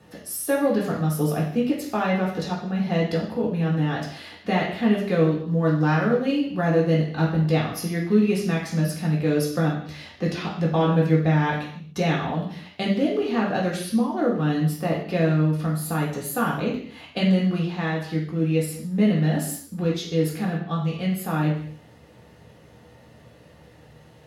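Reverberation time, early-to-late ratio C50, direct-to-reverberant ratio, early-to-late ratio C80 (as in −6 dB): non-exponential decay, 4.5 dB, −4.0 dB, 8.0 dB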